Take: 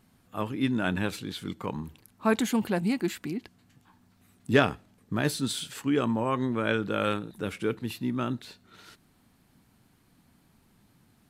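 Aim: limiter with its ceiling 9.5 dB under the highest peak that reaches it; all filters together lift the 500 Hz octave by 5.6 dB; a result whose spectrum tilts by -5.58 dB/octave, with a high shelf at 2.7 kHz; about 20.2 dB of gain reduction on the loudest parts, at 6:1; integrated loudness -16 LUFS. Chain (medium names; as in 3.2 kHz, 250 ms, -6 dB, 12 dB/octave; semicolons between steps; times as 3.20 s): peaking EQ 500 Hz +7 dB; treble shelf 2.7 kHz -5 dB; compression 6:1, threshold -35 dBFS; trim +26.5 dB; peak limiter -4.5 dBFS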